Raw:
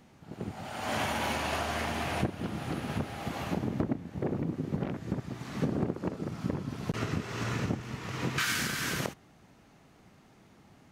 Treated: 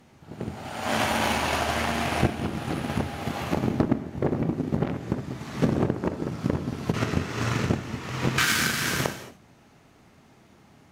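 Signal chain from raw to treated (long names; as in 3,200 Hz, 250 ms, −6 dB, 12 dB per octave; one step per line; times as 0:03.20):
mains-hum notches 50/100/150/200 Hz
reverb whose tail is shaped and stops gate 260 ms flat, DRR 7 dB
harmonic generator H 7 −24 dB, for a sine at −15 dBFS
level +8 dB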